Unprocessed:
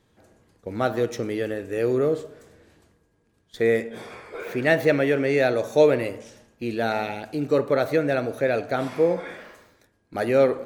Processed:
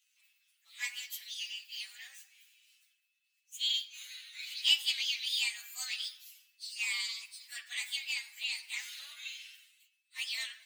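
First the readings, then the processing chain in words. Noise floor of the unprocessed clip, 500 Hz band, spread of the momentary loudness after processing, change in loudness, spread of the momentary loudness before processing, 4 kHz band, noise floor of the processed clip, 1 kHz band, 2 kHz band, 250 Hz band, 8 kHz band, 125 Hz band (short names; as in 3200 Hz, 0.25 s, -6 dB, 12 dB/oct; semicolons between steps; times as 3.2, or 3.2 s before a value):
-66 dBFS, under -40 dB, 16 LU, -11.0 dB, 16 LU, +9.0 dB, -79 dBFS, -30.0 dB, -9.0 dB, under -40 dB, n/a, under -40 dB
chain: inharmonic rescaling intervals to 125%; inverse Chebyshev high-pass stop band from 530 Hz, stop band 70 dB; gain +3.5 dB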